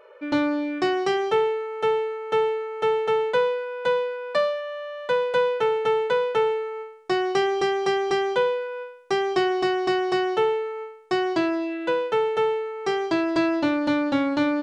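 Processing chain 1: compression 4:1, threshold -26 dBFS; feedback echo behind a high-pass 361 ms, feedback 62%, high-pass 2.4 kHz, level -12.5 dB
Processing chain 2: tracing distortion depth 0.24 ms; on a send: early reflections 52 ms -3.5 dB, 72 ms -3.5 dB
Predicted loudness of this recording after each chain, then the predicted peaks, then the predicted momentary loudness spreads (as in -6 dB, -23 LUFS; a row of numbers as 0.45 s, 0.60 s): -29.5 LUFS, -22.0 LUFS; -14.5 dBFS, -9.5 dBFS; 4 LU, 6 LU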